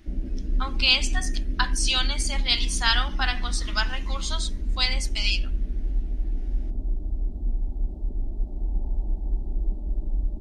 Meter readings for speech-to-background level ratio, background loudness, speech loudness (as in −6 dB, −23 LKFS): 6.0 dB, −31.5 LKFS, −25.5 LKFS